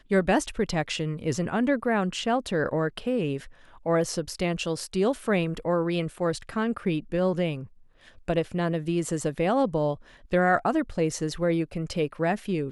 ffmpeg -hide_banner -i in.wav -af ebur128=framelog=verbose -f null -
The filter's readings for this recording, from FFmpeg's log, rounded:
Integrated loudness:
  I:         -27.0 LUFS
  Threshold: -37.2 LUFS
Loudness range:
  LRA:         2.3 LU
  Threshold: -47.4 LUFS
  LRA low:   -28.5 LUFS
  LRA high:  -26.2 LUFS